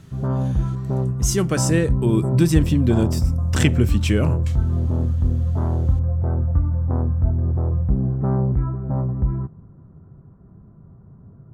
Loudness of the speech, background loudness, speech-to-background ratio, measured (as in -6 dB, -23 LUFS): -21.5 LUFS, -22.0 LUFS, 0.5 dB